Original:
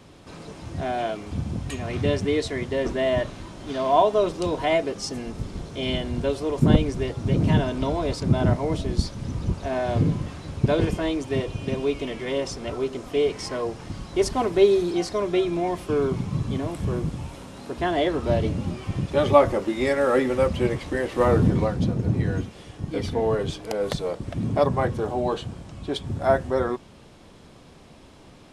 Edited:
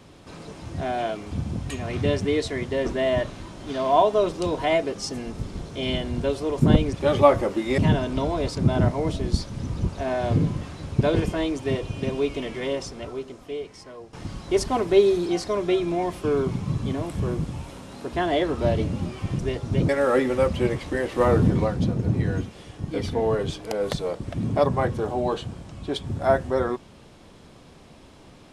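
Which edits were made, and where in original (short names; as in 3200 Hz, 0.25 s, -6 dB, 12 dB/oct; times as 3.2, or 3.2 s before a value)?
6.93–7.43 swap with 19.04–19.89
12.25–13.78 fade out quadratic, to -14 dB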